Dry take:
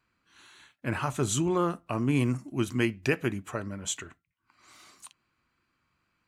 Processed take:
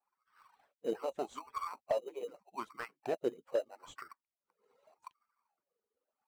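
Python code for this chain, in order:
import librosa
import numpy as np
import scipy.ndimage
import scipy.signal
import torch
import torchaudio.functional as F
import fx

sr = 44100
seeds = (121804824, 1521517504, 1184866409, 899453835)

p1 = fx.hpss_only(x, sr, part='percussive')
p2 = fx.wah_lfo(p1, sr, hz=0.81, low_hz=450.0, high_hz=1200.0, q=9.2)
p3 = fx.sample_hold(p2, sr, seeds[0], rate_hz=3400.0, jitter_pct=0)
p4 = p2 + (p3 * librosa.db_to_amplitude(-7.5))
p5 = fx.slew_limit(p4, sr, full_power_hz=13.0)
y = p5 * librosa.db_to_amplitude(8.5)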